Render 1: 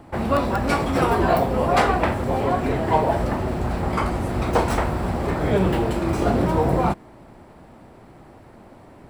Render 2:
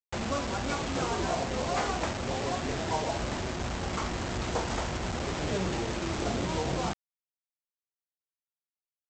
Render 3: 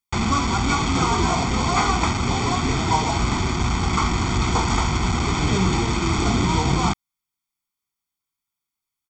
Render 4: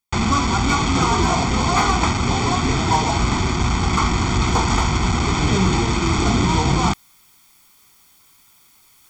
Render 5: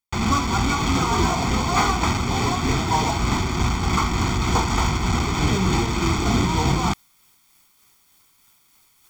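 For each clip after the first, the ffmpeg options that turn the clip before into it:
ffmpeg -i in.wav -af "acompressor=threshold=-33dB:ratio=1.5,aresample=16000,acrusher=bits=4:mix=0:aa=0.000001,aresample=44100,volume=-5.5dB" out.wav
ffmpeg -i in.wav -af "aecho=1:1:0.9:0.83,volume=8.5dB" out.wav
ffmpeg -i in.wav -af "areverse,acompressor=mode=upward:threshold=-32dB:ratio=2.5,areverse,asoftclip=type=hard:threshold=-11dB,volume=2.5dB" out.wav
ffmpeg -i in.wav -filter_complex "[0:a]asplit=2[link_01][link_02];[link_02]acrusher=bits=5:dc=4:mix=0:aa=0.000001,volume=-7.5dB[link_03];[link_01][link_03]amix=inputs=2:normalize=0,tremolo=f=3.3:d=0.3,volume=-4.5dB" out.wav

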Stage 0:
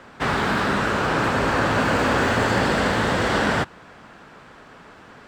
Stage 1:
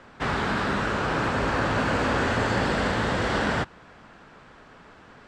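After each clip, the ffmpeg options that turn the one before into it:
ffmpeg -i in.wav -af "lowpass=8400,lowshelf=frequency=61:gain=8,volume=-4.5dB" out.wav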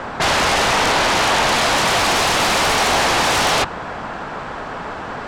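ffmpeg -i in.wav -af "aeval=exprs='0.251*sin(PI/2*7.94*val(0)/0.251)':channel_layout=same,equalizer=frequency=810:width_type=o:width=1.4:gain=7.5,volume=-4dB" out.wav

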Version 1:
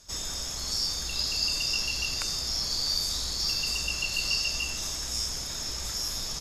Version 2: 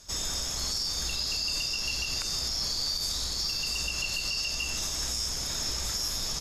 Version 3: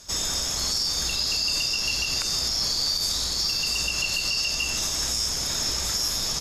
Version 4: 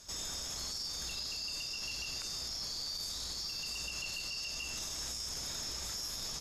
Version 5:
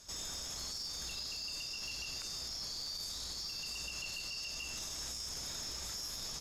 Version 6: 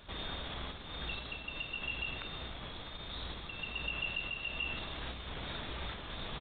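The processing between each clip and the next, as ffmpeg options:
ffmpeg -i in.wav -af "alimiter=limit=-23.5dB:level=0:latency=1:release=107,volume=2.5dB" out.wav
ffmpeg -i in.wav -af "lowshelf=frequency=63:gain=-7,volume=5.5dB" out.wav
ffmpeg -i in.wav -af "alimiter=limit=-23.5dB:level=0:latency=1,volume=-7.5dB" out.wav
ffmpeg -i in.wav -af "asoftclip=type=hard:threshold=-32.5dB,volume=-2dB" out.wav
ffmpeg -i in.wav -af "aresample=8000,aresample=44100,volume=8.5dB" out.wav

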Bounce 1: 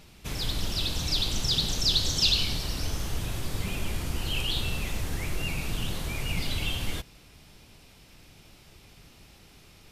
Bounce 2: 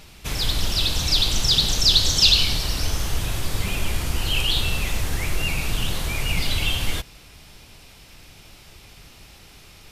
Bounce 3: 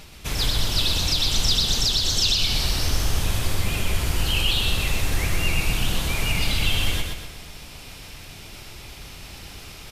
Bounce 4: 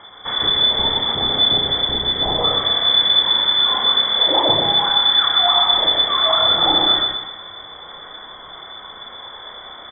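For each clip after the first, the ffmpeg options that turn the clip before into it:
ffmpeg -i in.wav -af "equalizer=frequency=220:width_type=o:width=2.5:gain=-5,volume=8dB" out.wav
ffmpeg -i in.wav -af "areverse,acompressor=mode=upward:threshold=-34dB:ratio=2.5,areverse,alimiter=limit=-12dB:level=0:latency=1:release=253,aecho=1:1:124|248|372|496|620:0.631|0.271|0.117|0.0502|0.0216" out.wav
ffmpeg -i in.wav -filter_complex "[0:a]lowpass=frequency=3000:width_type=q:width=0.5098,lowpass=frequency=3000:width_type=q:width=0.6013,lowpass=frequency=3000:width_type=q:width=0.9,lowpass=frequency=3000:width_type=q:width=2.563,afreqshift=-3500,asuperstop=centerf=2700:order=4:qfactor=1.6,asplit=2[link_01][link_02];[link_02]adelay=31,volume=-4dB[link_03];[link_01][link_03]amix=inputs=2:normalize=0,volume=7.5dB" out.wav

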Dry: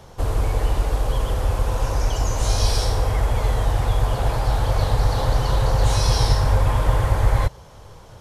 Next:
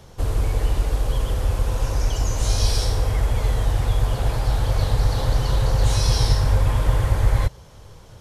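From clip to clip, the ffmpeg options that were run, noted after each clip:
ffmpeg -i in.wav -af "equalizer=frequency=860:width=0.79:gain=-5.5" out.wav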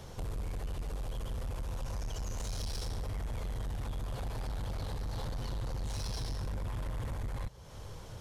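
ffmpeg -i in.wav -af "acompressor=threshold=-32dB:ratio=2.5,asoftclip=type=tanh:threshold=-32dB,volume=-1dB" out.wav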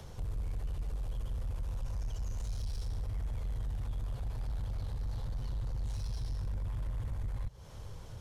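ffmpeg -i in.wav -filter_complex "[0:a]acrossover=split=140[link_01][link_02];[link_02]acompressor=threshold=-57dB:ratio=2.5[link_03];[link_01][link_03]amix=inputs=2:normalize=0,volume=1.5dB" out.wav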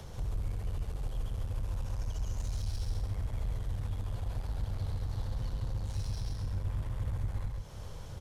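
ffmpeg -i in.wav -af "aecho=1:1:135:0.631,volume=2dB" out.wav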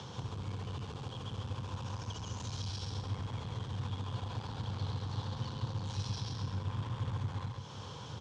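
ffmpeg -i in.wav -af "highpass=frequency=110:width=0.5412,highpass=frequency=110:width=1.3066,equalizer=frequency=160:width_type=q:width=4:gain=-3,equalizer=frequency=370:width_type=q:width=4:gain=-3,equalizer=frequency=620:width_type=q:width=4:gain=-9,equalizer=frequency=1000:width_type=q:width=4:gain=5,equalizer=frequency=2000:width_type=q:width=4:gain=-6,equalizer=frequency=3300:width_type=q:width=4:gain=6,lowpass=frequency=6500:width=0.5412,lowpass=frequency=6500:width=1.3066,volume=5dB" out.wav

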